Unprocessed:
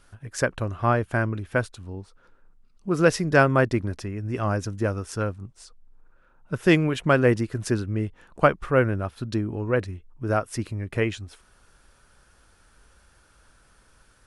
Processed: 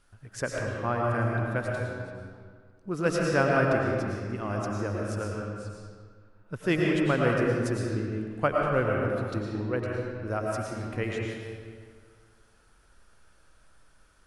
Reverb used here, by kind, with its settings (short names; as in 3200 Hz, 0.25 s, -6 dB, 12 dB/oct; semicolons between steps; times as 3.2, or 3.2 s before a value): digital reverb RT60 1.9 s, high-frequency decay 0.7×, pre-delay 70 ms, DRR -2 dB; gain -8 dB